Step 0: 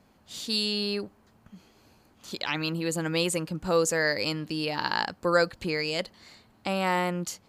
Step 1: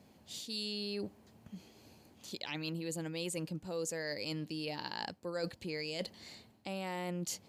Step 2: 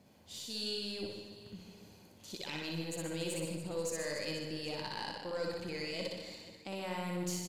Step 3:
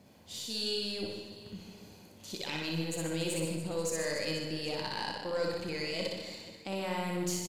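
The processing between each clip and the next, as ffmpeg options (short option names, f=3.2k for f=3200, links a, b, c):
-af "highpass=73,equalizer=f=1.3k:t=o:w=0.93:g=-9.5,areverse,acompressor=threshold=-38dB:ratio=5,areverse,volume=1dB"
-filter_complex "[0:a]asplit=2[a][b];[b]aecho=0:1:60|150|285|487.5|791.2:0.631|0.398|0.251|0.158|0.1[c];[a][c]amix=inputs=2:normalize=0,aeval=exprs='(tanh(20*val(0)+0.4)-tanh(0.4))/20':c=same,asplit=2[d][e];[e]aecho=0:1:62|124|186|248|310|372:0.531|0.244|0.112|0.0517|0.0238|0.0109[f];[d][f]amix=inputs=2:normalize=0,volume=-1dB"
-filter_complex "[0:a]asplit=2[a][b];[b]adelay=31,volume=-12.5dB[c];[a][c]amix=inputs=2:normalize=0,volume=4dB"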